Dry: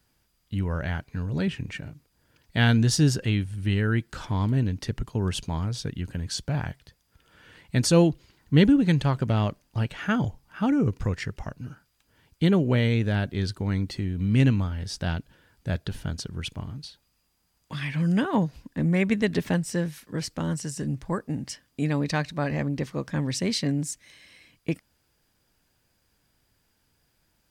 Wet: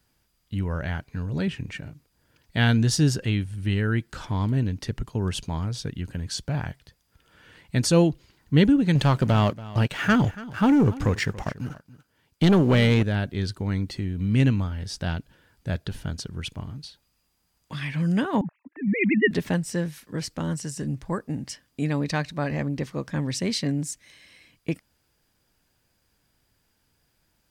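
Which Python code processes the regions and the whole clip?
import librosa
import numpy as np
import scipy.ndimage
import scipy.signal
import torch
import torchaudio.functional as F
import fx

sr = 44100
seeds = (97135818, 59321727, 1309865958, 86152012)

y = fx.chain(x, sr, fx.low_shelf(hz=72.0, db=-10.5),
    fx.leveller(passes=2),
    fx.echo_single(ms=283, db=-18.0), at=(8.95, 13.03))
y = fx.chain(y, sr, fx.sine_speech(),
    fx.lowpass_res(hz=2300.0, q=2.3),
    fx.band_widen(depth_pct=70), at=(18.41, 19.31))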